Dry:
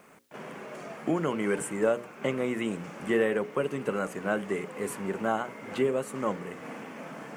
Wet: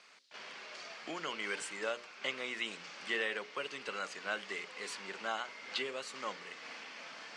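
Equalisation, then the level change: band-pass 4500 Hz, Q 3; air absorption 83 m; +15.0 dB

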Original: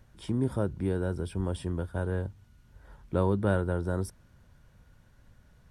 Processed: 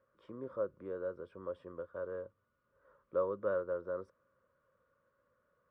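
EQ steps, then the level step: double band-pass 790 Hz, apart 1.1 oct; air absorption 66 m; +1.0 dB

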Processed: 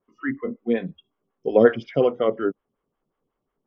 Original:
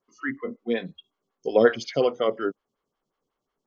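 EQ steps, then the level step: polynomial smoothing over 25 samples; low shelf 450 Hz +8 dB; -1.0 dB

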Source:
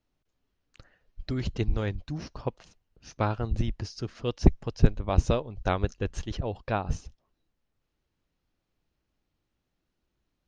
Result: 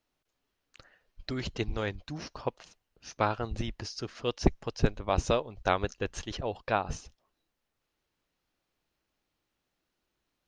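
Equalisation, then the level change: low shelf 280 Hz -12 dB; +3.0 dB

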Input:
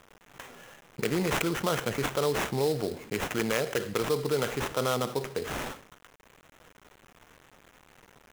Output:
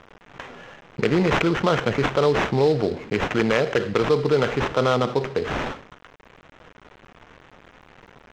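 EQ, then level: air absorption 170 m; +9.0 dB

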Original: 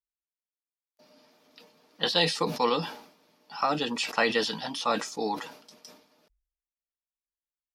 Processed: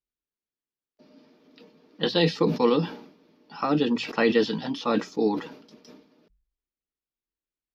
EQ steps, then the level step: running mean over 5 samples; resonant low shelf 510 Hz +8 dB, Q 1.5; notches 60/120/180 Hz; 0.0 dB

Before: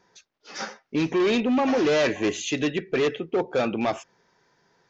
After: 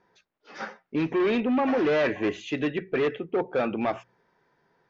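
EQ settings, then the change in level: Bessel low-pass 2300 Hz, order 2; notches 60/120/180 Hz; dynamic EQ 1700 Hz, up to +3 dB, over -37 dBFS, Q 1.1; -2.0 dB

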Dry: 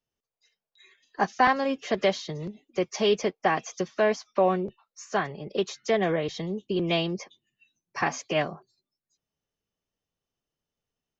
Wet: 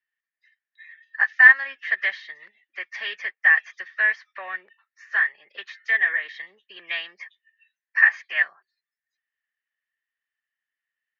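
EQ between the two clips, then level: resonant high-pass 1800 Hz, resonance Q 15; air absorption 300 m; 0.0 dB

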